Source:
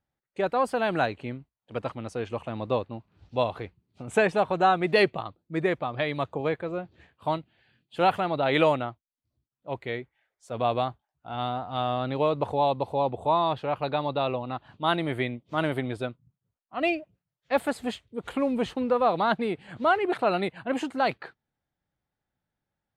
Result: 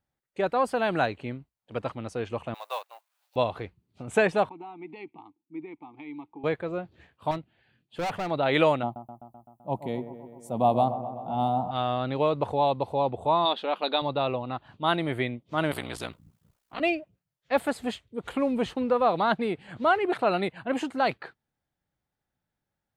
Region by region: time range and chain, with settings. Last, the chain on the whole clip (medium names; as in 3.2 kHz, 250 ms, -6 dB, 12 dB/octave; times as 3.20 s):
2.54–3.36 s: companding laws mixed up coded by A + inverse Chebyshev high-pass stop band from 270 Hz, stop band 50 dB + treble shelf 7.8 kHz +11.5 dB
4.49–6.44 s: compression 2:1, threshold -26 dBFS + vowel filter u
7.31–8.31 s: treble shelf 3.4 kHz -7 dB + hard clipper -27 dBFS
8.83–11.71 s: FFT filter 110 Hz 0 dB, 180 Hz +12 dB, 440 Hz -2 dB, 860 Hz +7 dB, 1.6 kHz -17 dB, 3 kHz -6 dB, 4.6 kHz -7 dB, 12 kHz +14 dB + feedback echo behind a low-pass 128 ms, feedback 69%, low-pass 1.5 kHz, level -11 dB
13.45–14.02 s: brick-wall FIR high-pass 180 Hz + peaking EQ 3.6 kHz +12 dB 0.56 oct
15.71–16.80 s: ring modulator 30 Hz + spectrum-flattening compressor 2:1
whole clip: none